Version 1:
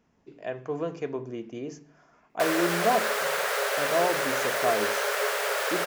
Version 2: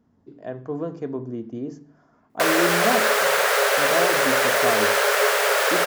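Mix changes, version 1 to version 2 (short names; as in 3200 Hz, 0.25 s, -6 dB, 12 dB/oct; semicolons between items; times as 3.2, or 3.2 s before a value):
speech: add fifteen-band EQ 100 Hz +11 dB, 250 Hz +8 dB, 2500 Hz -12 dB, 6300 Hz -7 dB; background +8.0 dB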